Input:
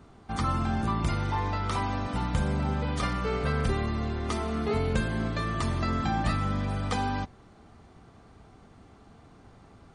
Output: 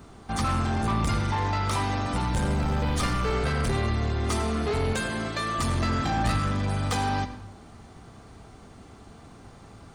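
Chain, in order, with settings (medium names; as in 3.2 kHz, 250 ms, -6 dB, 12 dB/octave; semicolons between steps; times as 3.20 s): treble shelf 6 kHz +10.5 dB; 2.37–3.32 s: added noise brown -38 dBFS; 4.93–5.59 s: high-pass 410 Hz 6 dB/octave; saturation -26.5 dBFS, distortion -12 dB; reverberation RT60 0.85 s, pre-delay 75 ms, DRR 10.5 dB; trim +5 dB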